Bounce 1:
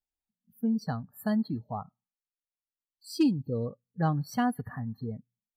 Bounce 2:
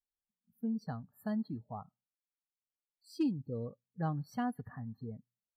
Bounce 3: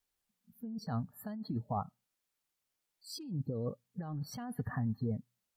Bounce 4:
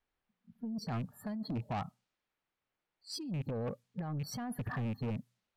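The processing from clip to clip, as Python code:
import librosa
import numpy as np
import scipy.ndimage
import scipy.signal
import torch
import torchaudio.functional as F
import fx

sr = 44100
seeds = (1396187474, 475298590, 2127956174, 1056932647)

y1 = fx.high_shelf(x, sr, hz=2800.0, db=-7.5)
y1 = F.gain(torch.from_numpy(y1), -7.5).numpy()
y2 = fx.over_compress(y1, sr, threshold_db=-42.0, ratio=-1.0)
y2 = fx.vibrato(y2, sr, rate_hz=8.3, depth_cents=31.0)
y2 = F.gain(torch.from_numpy(y2), 5.0).numpy()
y3 = fx.rattle_buzz(y2, sr, strikes_db=-36.0, level_db=-44.0)
y3 = 10.0 ** (-36.5 / 20.0) * np.tanh(y3 / 10.0 ** (-36.5 / 20.0))
y3 = fx.env_lowpass(y3, sr, base_hz=2300.0, full_db=-41.5)
y3 = F.gain(torch.from_numpy(y3), 4.5).numpy()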